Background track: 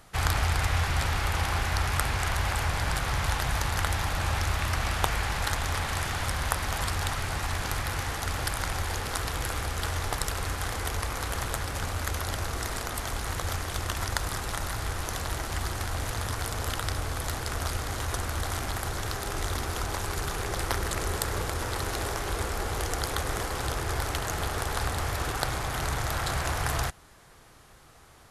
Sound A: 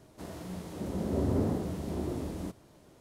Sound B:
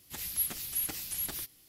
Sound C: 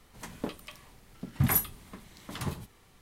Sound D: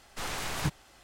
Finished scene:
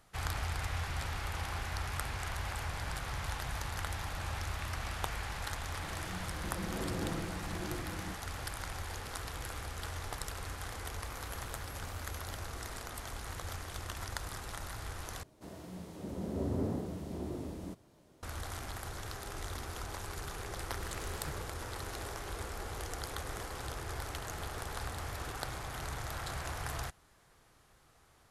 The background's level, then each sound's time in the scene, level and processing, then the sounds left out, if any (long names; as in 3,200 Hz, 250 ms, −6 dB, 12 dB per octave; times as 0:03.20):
background track −10.5 dB
0:05.63: mix in A −10.5 dB + comb filter 6 ms, depth 90%
0:10.93: mix in B −16 dB + downward compressor 2 to 1, threshold −46 dBFS
0:15.23: overwrite with A −5.5 dB
0:20.62: mix in D −15 dB
0:24.14: mix in B −18 dB + windowed peak hold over 65 samples
not used: C